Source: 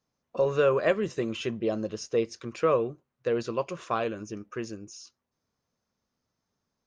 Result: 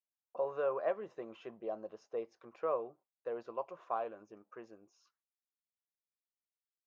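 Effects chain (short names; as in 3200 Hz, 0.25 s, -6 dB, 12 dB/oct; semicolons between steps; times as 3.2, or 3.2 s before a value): gate with hold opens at -46 dBFS; band-pass sweep 790 Hz -> 3700 Hz, 4.89–5.51; gain -3.5 dB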